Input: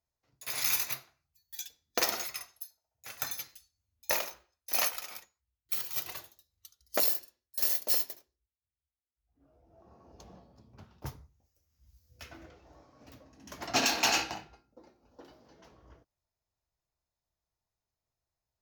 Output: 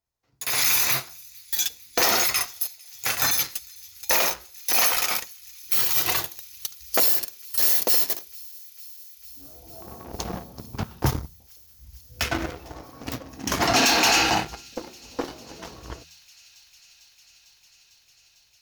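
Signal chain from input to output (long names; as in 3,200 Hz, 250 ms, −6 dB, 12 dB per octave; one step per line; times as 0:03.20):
notch filter 600 Hz, Q 12
hum removal 80.38 Hz, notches 2
leveller curve on the samples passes 2
brickwall limiter −31.5 dBFS, peak gain reduction 18.5 dB
automatic gain control gain up to 14 dB
on a send: delay with a high-pass on its return 450 ms, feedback 83%, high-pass 3,500 Hz, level −23.5 dB
on the sum: level +5.5 dB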